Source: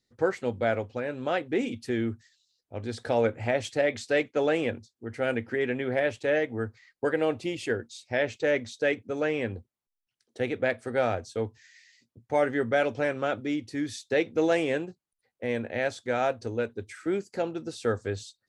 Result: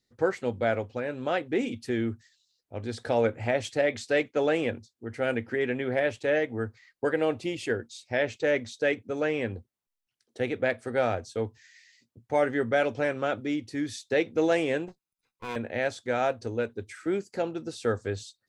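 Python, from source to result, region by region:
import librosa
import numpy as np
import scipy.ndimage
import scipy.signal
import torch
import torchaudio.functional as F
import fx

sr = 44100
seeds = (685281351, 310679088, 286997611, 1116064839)

y = fx.chain(x, sr, fx.lower_of_two(delay_ms=0.8),
    fx.low_shelf(hz=150.0, db=-9.5),
    fx.notch(hz=1200.0, q=17.0), at=(14.88, 15.56))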